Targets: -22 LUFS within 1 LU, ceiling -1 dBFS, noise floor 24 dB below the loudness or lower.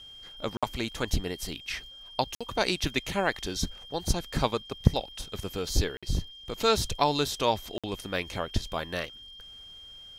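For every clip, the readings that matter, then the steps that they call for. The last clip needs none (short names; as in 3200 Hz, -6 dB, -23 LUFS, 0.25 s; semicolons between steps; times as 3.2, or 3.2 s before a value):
dropouts 4; longest dropout 56 ms; steady tone 3200 Hz; tone level -45 dBFS; loudness -30.5 LUFS; peak -6.0 dBFS; loudness target -22.0 LUFS
-> interpolate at 0.57/2.35/5.97/7.78, 56 ms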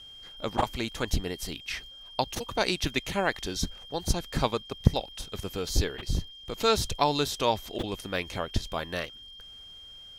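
dropouts 0; steady tone 3200 Hz; tone level -45 dBFS
-> notch 3200 Hz, Q 30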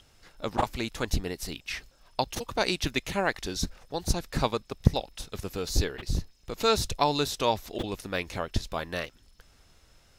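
steady tone none; loudness -30.5 LUFS; peak -6.0 dBFS; loudness target -22.0 LUFS
-> gain +8.5 dB; limiter -1 dBFS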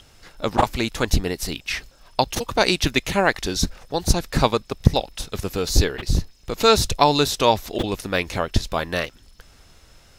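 loudness -22.0 LUFS; peak -1.0 dBFS; noise floor -53 dBFS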